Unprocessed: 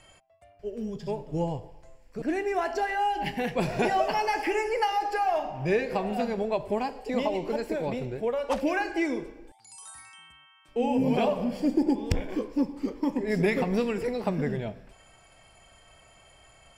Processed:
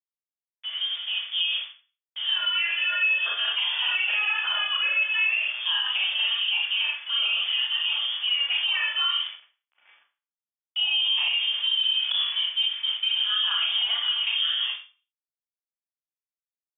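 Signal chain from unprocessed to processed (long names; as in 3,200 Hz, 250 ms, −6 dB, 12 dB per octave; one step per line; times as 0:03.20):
centre clipping without the shift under −38.5 dBFS
voice inversion scrambler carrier 3,400 Hz
high-pass filter 1,000 Hz 12 dB per octave
four-comb reverb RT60 0.35 s, combs from 27 ms, DRR −2.5 dB
brickwall limiter −16.5 dBFS, peak gain reduction 8.5 dB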